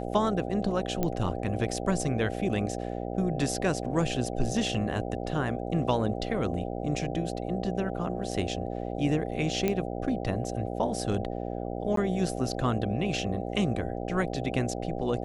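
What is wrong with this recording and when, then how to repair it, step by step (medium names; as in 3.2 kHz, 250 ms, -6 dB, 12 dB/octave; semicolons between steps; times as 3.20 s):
buzz 60 Hz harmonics 13 -34 dBFS
1.03 s: pop -14 dBFS
9.68 s: pop -13 dBFS
11.96–11.97 s: dropout 13 ms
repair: de-click; de-hum 60 Hz, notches 13; interpolate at 11.96 s, 13 ms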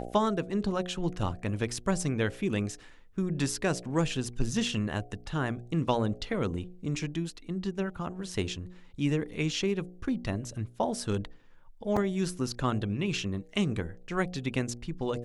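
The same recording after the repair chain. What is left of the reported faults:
nothing left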